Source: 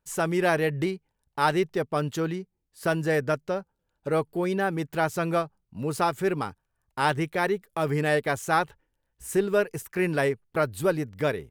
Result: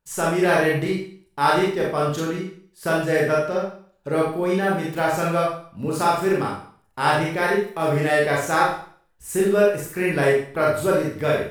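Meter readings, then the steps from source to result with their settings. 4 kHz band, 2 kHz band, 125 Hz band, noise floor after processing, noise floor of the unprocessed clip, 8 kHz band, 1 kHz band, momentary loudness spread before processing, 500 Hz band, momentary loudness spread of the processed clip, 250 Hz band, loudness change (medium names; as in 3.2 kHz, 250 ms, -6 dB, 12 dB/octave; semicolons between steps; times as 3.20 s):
+5.5 dB, +5.5 dB, +3.5 dB, -62 dBFS, -79 dBFS, +5.5 dB, +5.5 dB, 9 LU, +6.0 dB, 10 LU, +4.5 dB, +5.5 dB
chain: Schroeder reverb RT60 0.5 s, combs from 28 ms, DRR -4 dB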